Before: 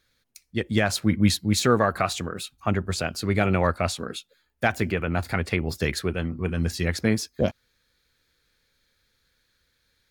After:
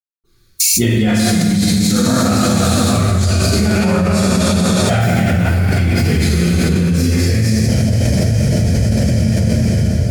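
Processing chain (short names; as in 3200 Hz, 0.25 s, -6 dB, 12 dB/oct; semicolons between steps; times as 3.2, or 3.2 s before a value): spectral noise reduction 28 dB; tone controls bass +13 dB, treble +9 dB; notches 50/100 Hz; vibrato 0.63 Hz 53 cents; flange 0.41 Hz, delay 0.7 ms, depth 5 ms, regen +15%; reverb RT60 3.5 s, pre-delay 0.238 s; fast leveller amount 100%; gain -2.5 dB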